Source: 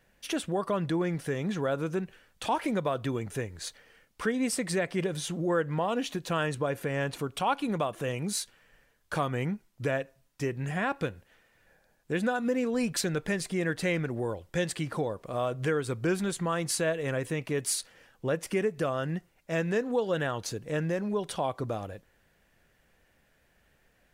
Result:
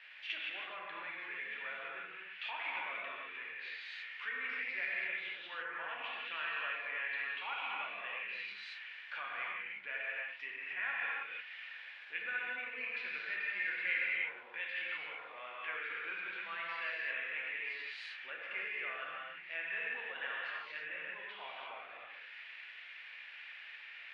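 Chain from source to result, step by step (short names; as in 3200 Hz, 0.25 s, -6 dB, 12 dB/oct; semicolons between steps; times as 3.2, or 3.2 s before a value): zero-crossing step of -42 dBFS; air absorption 420 m; non-linear reverb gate 0.37 s flat, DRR -5.5 dB; treble ducked by the level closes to 2500 Hz, closed at -23.5 dBFS; ladder band-pass 2800 Hz, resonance 50%; gain +10 dB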